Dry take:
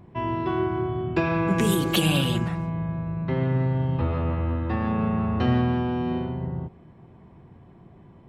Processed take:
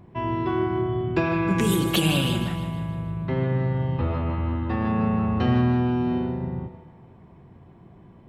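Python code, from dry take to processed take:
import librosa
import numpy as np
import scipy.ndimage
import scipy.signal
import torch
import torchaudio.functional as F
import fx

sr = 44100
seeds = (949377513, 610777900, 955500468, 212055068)

y = fx.echo_split(x, sr, split_hz=530.0, low_ms=81, high_ms=156, feedback_pct=52, wet_db=-11.0)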